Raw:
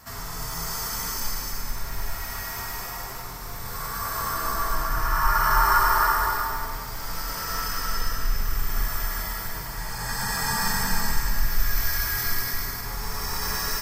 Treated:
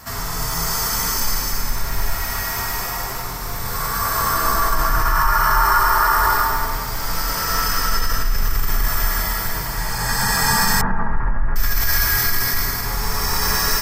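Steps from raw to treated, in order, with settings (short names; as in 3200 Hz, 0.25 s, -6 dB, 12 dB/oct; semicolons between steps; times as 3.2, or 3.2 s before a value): 10.81–11.56 LPF 1500 Hz 24 dB/oct; in parallel at -1.5 dB: negative-ratio compressor -24 dBFS, ratio -0.5; on the sum: gain +2.5 dB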